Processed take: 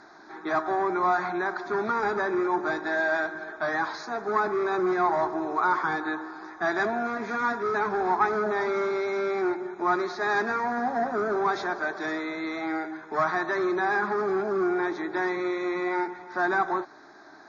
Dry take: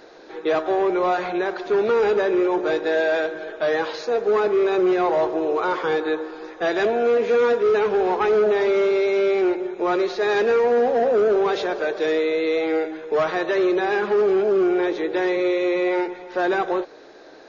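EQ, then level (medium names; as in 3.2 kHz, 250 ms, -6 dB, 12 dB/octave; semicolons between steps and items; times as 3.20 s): high-pass 160 Hz 6 dB/octave; distance through air 62 m; static phaser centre 1.2 kHz, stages 4; +2.5 dB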